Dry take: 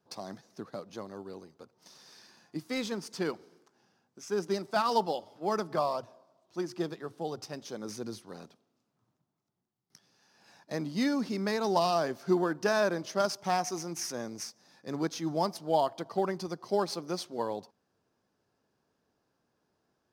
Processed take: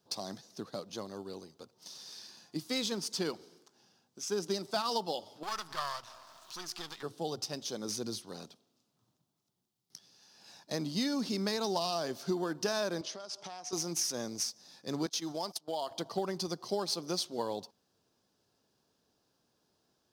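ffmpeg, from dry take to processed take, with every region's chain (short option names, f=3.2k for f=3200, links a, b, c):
-filter_complex "[0:a]asettb=1/sr,asplit=3[a][b][c];[a]atrim=end=5.434[d];[b]atrim=start=5.43:end=7.03,asetpts=PTS-STARTPTS,afade=t=in:d=0.004:c=qsin,afade=t=out:st=1.596:d=0.004:c=qsin,aeval=exprs='if(lt(val(0),0),0.251*val(0),val(0))':c=same,lowshelf=f=750:t=q:w=1.5:g=-12.5,acompressor=mode=upward:threshold=-38dB:ratio=2.5:attack=3.2:release=140:knee=2.83:detection=peak[e];[c]atrim=start=7.026[f];[d][e]acrossfade=d=0.004:c1=hsin:c2=qsin[g];[g][f]acrossfade=d=0.004:c1=qsin:c2=hsin,asettb=1/sr,asplit=3[h][i][j];[h]atrim=end=13.014[k];[i]atrim=start=13.01:end=13.73,asetpts=PTS-STARTPTS,afade=t=in:d=0.004:c=qsin,afade=t=out:st=0.716:d=0.004:c=qsin,bass=f=250:g=-9,treble=f=4k:g=-3,acompressor=threshold=-41dB:ratio=12:attack=3.2:release=140:knee=1:detection=peak,highpass=110,lowpass=7.7k[l];[j]atrim=start=13.726[m];[k][l]acrossfade=d=0.004:c1=hsin:c2=qsin[n];[n][m]acrossfade=d=0.004:c1=qsin:c2=hsin,asettb=1/sr,asplit=3[o][p][q];[o]atrim=end=15.064[r];[p]atrim=start=15.06:end=15.91,asetpts=PTS-STARTPTS,afade=t=in:d=0.004:c=qsin,afade=t=out:st=0.846:d=0.004:c=qsin,highpass=f=420:p=1,agate=range=-19dB:threshold=-43dB:ratio=16:release=100:detection=peak,acompressor=threshold=-33dB:ratio=3:attack=3.2:release=140:knee=1:detection=peak[s];[q]atrim=start=15.906[t];[r][s]acrossfade=d=0.004:c1=hsin:c2=qsin[u];[u][t]acrossfade=d=0.004:c1=qsin:c2=hsin,highshelf=f=2.7k:t=q:w=1.5:g=6.5,acompressor=threshold=-29dB:ratio=6"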